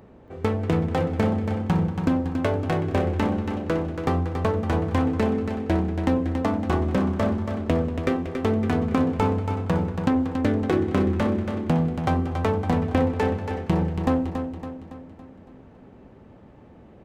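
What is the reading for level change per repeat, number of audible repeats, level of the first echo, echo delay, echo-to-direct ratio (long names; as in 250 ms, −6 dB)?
−6.0 dB, 5, −7.5 dB, 280 ms, −6.0 dB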